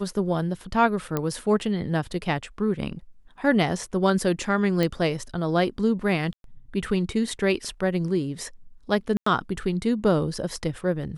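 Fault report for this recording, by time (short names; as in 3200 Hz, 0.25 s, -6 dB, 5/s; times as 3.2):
1.17 pop -12 dBFS
4.83 pop
6.33–6.44 gap 0.112 s
9.17–9.26 gap 94 ms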